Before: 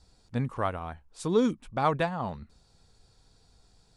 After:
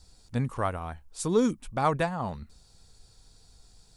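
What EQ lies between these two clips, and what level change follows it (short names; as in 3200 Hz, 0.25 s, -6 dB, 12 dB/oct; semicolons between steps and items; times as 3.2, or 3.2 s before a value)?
dynamic EQ 3500 Hz, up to -6 dB, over -51 dBFS, Q 1.6; low shelf 63 Hz +8 dB; high shelf 4800 Hz +11.5 dB; 0.0 dB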